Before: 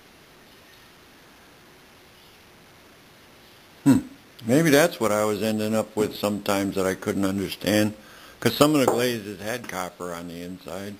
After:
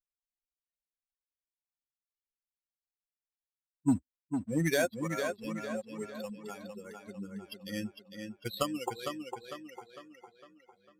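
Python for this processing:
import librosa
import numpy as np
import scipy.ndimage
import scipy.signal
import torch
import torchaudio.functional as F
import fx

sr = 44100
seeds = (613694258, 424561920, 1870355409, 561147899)

y = fx.bin_expand(x, sr, power=3.0)
y = fx.dynamic_eq(y, sr, hz=450.0, q=3.3, threshold_db=-41.0, ratio=4.0, max_db=-5)
y = fx.leveller(y, sr, passes=1, at=(3.88, 6.3))
y = fx.echo_tape(y, sr, ms=453, feedback_pct=50, wet_db=-4.5, lp_hz=5300.0, drive_db=10.0, wow_cents=23)
y = y * librosa.db_to_amplitude(-8.0)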